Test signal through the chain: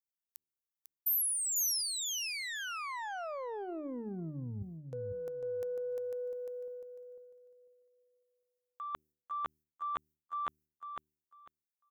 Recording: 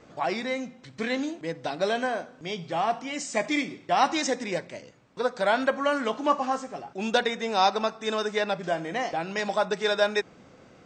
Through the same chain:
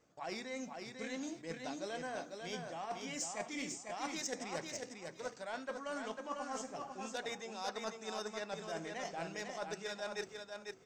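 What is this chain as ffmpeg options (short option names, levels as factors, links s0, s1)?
-filter_complex "[0:a]agate=range=0.316:threshold=0.00501:ratio=16:detection=peak,highshelf=f=7800:g=3.5,bandreject=f=76.3:t=h:w=4,bandreject=f=152.6:t=h:w=4,bandreject=f=228.9:t=h:w=4,bandreject=f=305.2:t=h:w=4,bandreject=f=381.5:t=h:w=4,areverse,acompressor=threshold=0.0282:ratio=10,areverse,aeval=exprs='0.126*(cos(1*acos(clip(val(0)/0.126,-1,1)))-cos(1*PI/2))+0.00158*(cos(2*acos(clip(val(0)/0.126,-1,1)))-cos(2*PI/2))+0.02*(cos(3*acos(clip(val(0)/0.126,-1,1)))-cos(3*PI/2))':c=same,aexciter=amount=2.4:drive=5.2:freq=5300,asplit=2[s0][s1];[s1]aecho=0:1:498|996|1494:0.562|0.107|0.0203[s2];[s0][s2]amix=inputs=2:normalize=0,volume=0.668"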